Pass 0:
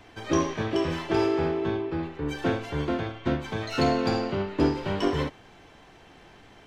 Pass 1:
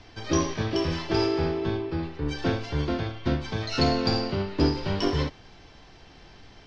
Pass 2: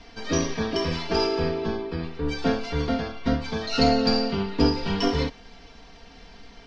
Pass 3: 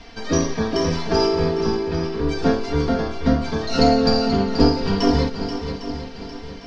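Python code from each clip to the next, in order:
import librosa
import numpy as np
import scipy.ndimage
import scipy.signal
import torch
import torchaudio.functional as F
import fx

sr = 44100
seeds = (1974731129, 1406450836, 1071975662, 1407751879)

y1 = fx.lowpass_res(x, sr, hz=5100.0, q=3.8)
y1 = fx.low_shelf(y1, sr, hz=110.0, db=11.5)
y1 = F.gain(torch.from_numpy(y1), -2.0).numpy()
y2 = y1 + 0.94 * np.pad(y1, (int(4.3 * sr / 1000.0), 0))[:len(y1)]
y3 = fx.dynamic_eq(y2, sr, hz=2800.0, q=1.1, threshold_db=-45.0, ratio=4.0, max_db=-7)
y3 = fx.echo_swing(y3, sr, ms=804, ratio=1.5, feedback_pct=38, wet_db=-9.5)
y3 = F.gain(torch.from_numpy(y3), 5.0).numpy()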